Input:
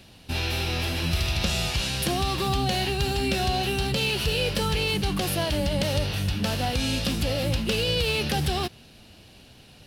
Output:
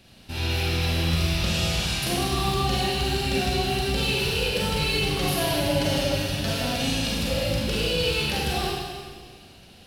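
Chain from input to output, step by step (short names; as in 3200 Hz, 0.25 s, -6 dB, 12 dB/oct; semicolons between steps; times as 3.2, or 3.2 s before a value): 4.76–6.9 comb 7.3 ms; Schroeder reverb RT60 1.7 s, combs from 33 ms, DRR -5 dB; gain -5 dB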